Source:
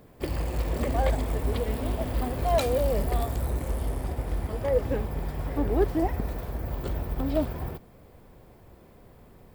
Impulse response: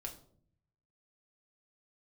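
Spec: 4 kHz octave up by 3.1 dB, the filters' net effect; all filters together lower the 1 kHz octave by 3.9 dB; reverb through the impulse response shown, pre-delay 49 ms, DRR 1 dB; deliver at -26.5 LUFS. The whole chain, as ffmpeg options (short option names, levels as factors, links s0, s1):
-filter_complex "[0:a]equalizer=f=1000:t=o:g=-6.5,equalizer=f=4000:t=o:g=4,asplit=2[s0][s1];[1:a]atrim=start_sample=2205,adelay=49[s2];[s1][s2]afir=irnorm=-1:irlink=0,volume=1.19[s3];[s0][s3]amix=inputs=2:normalize=0,volume=0.841"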